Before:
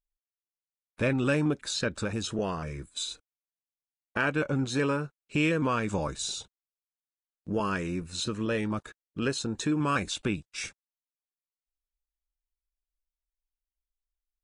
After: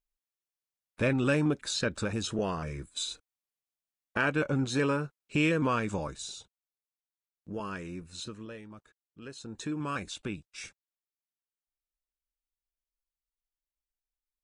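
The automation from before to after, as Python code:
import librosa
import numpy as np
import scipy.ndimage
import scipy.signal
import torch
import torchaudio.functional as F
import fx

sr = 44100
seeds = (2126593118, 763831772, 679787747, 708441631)

y = fx.gain(x, sr, db=fx.line((5.75, -0.5), (6.32, -8.0), (8.23, -8.0), (8.64, -17.5), (9.21, -17.5), (9.62, -7.0)))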